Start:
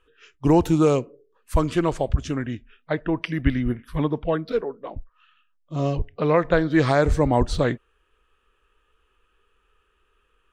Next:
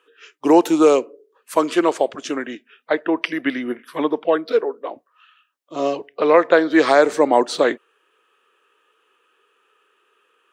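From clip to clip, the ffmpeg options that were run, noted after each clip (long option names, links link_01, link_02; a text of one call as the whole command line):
ffmpeg -i in.wav -af "highpass=frequency=310:width=0.5412,highpass=frequency=310:width=1.3066,volume=6.5dB" out.wav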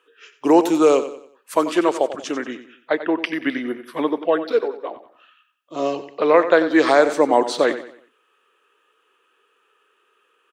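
ffmpeg -i in.wav -af "aecho=1:1:92|184|276|368:0.237|0.0877|0.0325|0.012,volume=-1dB" out.wav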